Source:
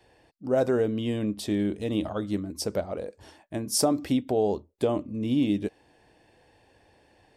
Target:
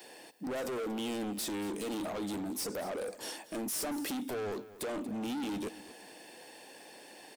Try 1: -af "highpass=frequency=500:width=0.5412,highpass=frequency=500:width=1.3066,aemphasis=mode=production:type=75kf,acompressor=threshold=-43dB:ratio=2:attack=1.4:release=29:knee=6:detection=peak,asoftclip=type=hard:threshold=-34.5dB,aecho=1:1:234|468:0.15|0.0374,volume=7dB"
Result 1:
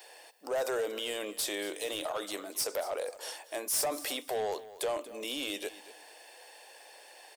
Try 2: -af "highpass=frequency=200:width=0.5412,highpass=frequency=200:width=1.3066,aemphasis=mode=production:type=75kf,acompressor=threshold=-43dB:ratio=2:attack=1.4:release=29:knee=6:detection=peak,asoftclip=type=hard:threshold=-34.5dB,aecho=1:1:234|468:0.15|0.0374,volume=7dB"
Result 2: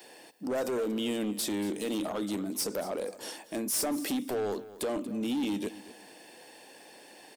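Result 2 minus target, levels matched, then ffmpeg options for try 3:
hard clipping: distortion −5 dB
-af "highpass=frequency=200:width=0.5412,highpass=frequency=200:width=1.3066,aemphasis=mode=production:type=75kf,acompressor=threshold=-43dB:ratio=2:attack=1.4:release=29:knee=6:detection=peak,asoftclip=type=hard:threshold=-41.5dB,aecho=1:1:234|468:0.15|0.0374,volume=7dB"

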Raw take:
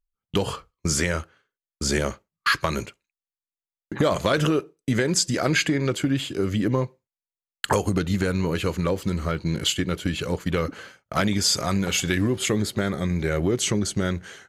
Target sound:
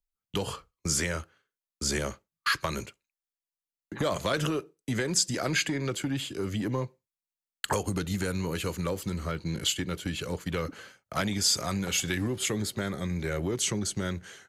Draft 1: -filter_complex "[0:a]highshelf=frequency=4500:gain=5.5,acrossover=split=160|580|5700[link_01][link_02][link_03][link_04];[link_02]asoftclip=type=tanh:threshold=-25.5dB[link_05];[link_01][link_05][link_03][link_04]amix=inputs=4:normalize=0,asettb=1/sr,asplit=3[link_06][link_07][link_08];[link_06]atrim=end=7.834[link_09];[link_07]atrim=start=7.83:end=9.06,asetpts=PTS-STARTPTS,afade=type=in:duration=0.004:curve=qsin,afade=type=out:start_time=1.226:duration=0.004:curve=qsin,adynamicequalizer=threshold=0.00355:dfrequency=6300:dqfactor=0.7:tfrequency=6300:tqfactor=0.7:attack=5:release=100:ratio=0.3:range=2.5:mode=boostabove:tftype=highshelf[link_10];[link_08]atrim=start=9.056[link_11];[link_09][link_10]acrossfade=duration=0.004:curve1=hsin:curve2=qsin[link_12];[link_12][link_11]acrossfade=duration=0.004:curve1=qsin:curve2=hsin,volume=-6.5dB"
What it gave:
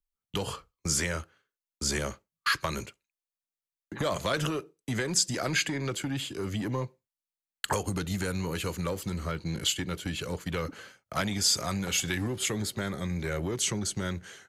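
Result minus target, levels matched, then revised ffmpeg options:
soft clipping: distortion +7 dB
-filter_complex "[0:a]highshelf=frequency=4500:gain=5.5,acrossover=split=160|580|5700[link_01][link_02][link_03][link_04];[link_02]asoftclip=type=tanh:threshold=-19.5dB[link_05];[link_01][link_05][link_03][link_04]amix=inputs=4:normalize=0,asettb=1/sr,asplit=3[link_06][link_07][link_08];[link_06]atrim=end=7.834[link_09];[link_07]atrim=start=7.83:end=9.06,asetpts=PTS-STARTPTS,afade=type=in:duration=0.004:curve=qsin,afade=type=out:start_time=1.226:duration=0.004:curve=qsin,adynamicequalizer=threshold=0.00355:dfrequency=6300:dqfactor=0.7:tfrequency=6300:tqfactor=0.7:attack=5:release=100:ratio=0.3:range=2.5:mode=boostabove:tftype=highshelf[link_10];[link_08]atrim=start=9.056[link_11];[link_09][link_10]acrossfade=duration=0.004:curve1=hsin:curve2=qsin[link_12];[link_12][link_11]acrossfade=duration=0.004:curve1=qsin:curve2=hsin,volume=-6.5dB"

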